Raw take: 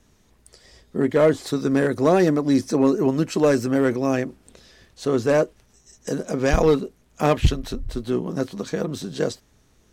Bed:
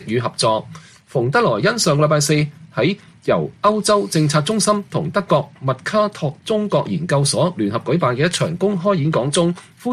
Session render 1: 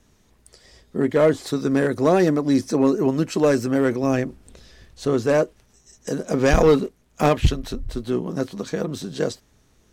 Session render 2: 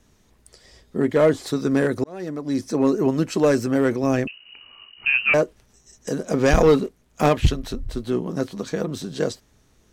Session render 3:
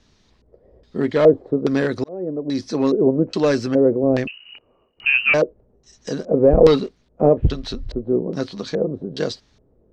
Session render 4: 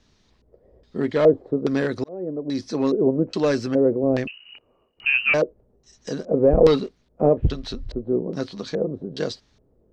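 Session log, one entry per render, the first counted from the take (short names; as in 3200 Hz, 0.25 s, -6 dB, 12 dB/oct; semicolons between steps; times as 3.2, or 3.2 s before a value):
4.03–5.14 low shelf 91 Hz +11.5 dB; 6.31–7.29 sample leveller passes 1
2.04–2.95 fade in; 4.27–5.34 inverted band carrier 2900 Hz
LFO low-pass square 1.2 Hz 520–4500 Hz
gain -3 dB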